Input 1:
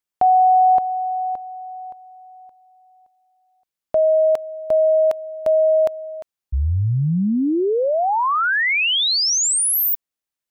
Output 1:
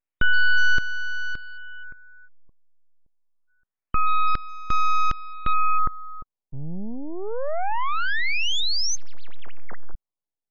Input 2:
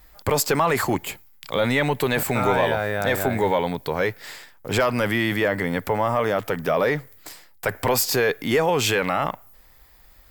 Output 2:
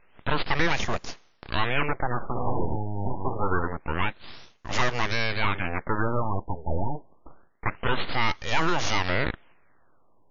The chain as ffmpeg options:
ffmpeg -i in.wav -af "highpass=95,equalizer=frequency=150:width_type=o:width=1.3:gain=-8,aeval=exprs='abs(val(0))':channel_layout=same,afftfilt=real='re*lt(b*sr/1024,930*pow(7200/930,0.5+0.5*sin(2*PI*0.26*pts/sr)))':imag='im*lt(b*sr/1024,930*pow(7200/930,0.5+0.5*sin(2*PI*0.26*pts/sr)))':win_size=1024:overlap=0.75" out.wav

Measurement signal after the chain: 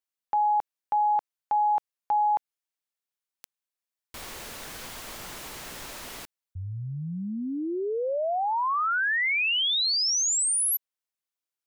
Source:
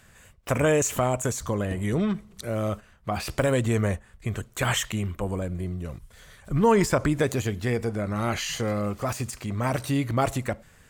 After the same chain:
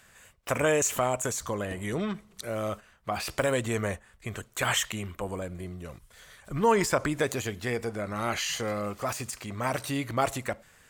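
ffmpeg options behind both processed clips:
ffmpeg -i in.wav -af "lowshelf=frequency=320:gain=-10" out.wav

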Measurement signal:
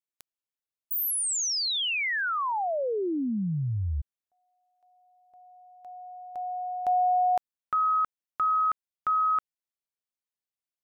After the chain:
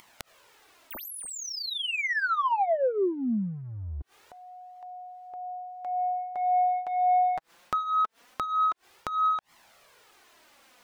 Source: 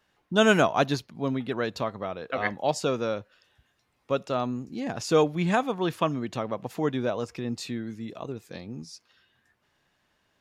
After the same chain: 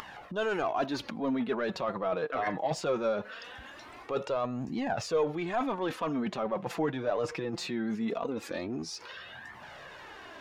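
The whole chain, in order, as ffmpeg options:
ffmpeg -i in.wav -filter_complex "[0:a]areverse,acompressor=threshold=-35dB:ratio=6:attack=0.43:release=166:knee=1:detection=peak,areverse,asplit=2[link_01][link_02];[link_02]highpass=frequency=720:poles=1,volume=17dB,asoftclip=type=tanh:threshold=-21dB[link_03];[link_01][link_03]amix=inputs=2:normalize=0,lowpass=frequency=1100:poles=1,volume=-6dB,flanger=delay=0.9:depth=6:regen=13:speed=0.21:shape=triangular,acompressor=mode=upward:threshold=-46dB:ratio=2.5:attack=12:release=66:knee=2.83:detection=peak,volume=9dB" out.wav

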